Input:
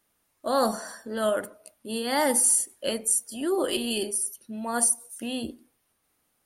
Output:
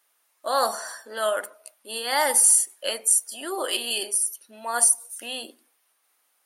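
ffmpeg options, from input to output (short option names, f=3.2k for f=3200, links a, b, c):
-af "highpass=710,volume=4.5dB"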